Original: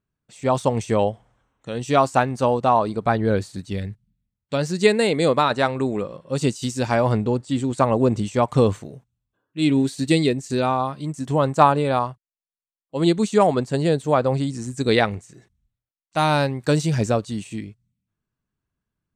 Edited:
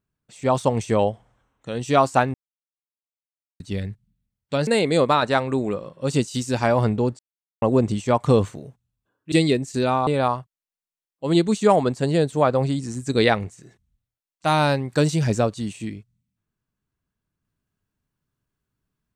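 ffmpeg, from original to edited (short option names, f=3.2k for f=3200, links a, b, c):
-filter_complex "[0:a]asplit=8[a][b][c][d][e][f][g][h];[a]atrim=end=2.34,asetpts=PTS-STARTPTS,afade=t=out:st=2.336:d=0.004:c=hsin[i];[b]atrim=start=2.34:end=3.6,asetpts=PTS-STARTPTS,volume=0[j];[c]atrim=start=3.6:end=4.672,asetpts=PTS-STARTPTS,afade=t=in:d=0.004:c=hsin[k];[d]atrim=start=4.948:end=7.47,asetpts=PTS-STARTPTS,afade=t=out:st=2.518:d=0.004:c=hsin[l];[e]atrim=start=7.47:end=7.9,asetpts=PTS-STARTPTS,volume=0[m];[f]atrim=start=7.9:end=9.602,asetpts=PTS-STARTPTS,afade=t=in:d=0.004:c=hsin[n];[g]atrim=start=10.078:end=10.832[o];[h]atrim=start=11.778[p];[i][j][k]concat=n=3:v=0:a=1[q];[l][m][n]concat=n=3:v=0:a=1[r];[q][r]acrossfade=d=0.004:c1=hsin:c2=hsin[s];[s][o]acrossfade=d=0.004:c1=hsin:c2=hsin[t];[t][p]acrossfade=d=0.004:c1=hsin:c2=hsin"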